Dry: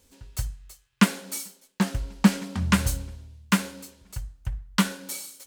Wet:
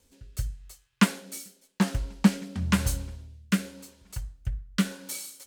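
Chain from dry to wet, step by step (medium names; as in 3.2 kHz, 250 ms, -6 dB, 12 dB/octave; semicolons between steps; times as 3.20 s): rotary cabinet horn 0.9 Hz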